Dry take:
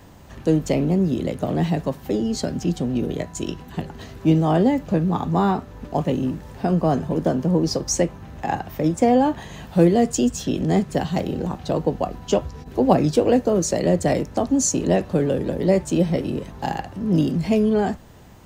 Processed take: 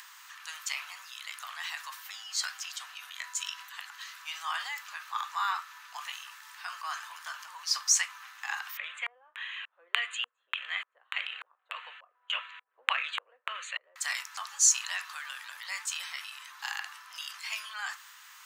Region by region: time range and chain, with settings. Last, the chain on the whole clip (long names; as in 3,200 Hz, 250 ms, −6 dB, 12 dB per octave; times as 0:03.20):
0:08.77–0:13.96: low shelf with overshoot 640 Hz +8.5 dB, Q 3 + auto-filter low-pass square 1.7 Hz 230–2,700 Hz + Butterworth band-reject 5,300 Hz, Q 1.7
whole clip: Butterworth high-pass 1,100 Hz 48 dB per octave; transient designer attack −1 dB, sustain +5 dB; upward compression, threshold −46 dBFS; level +1 dB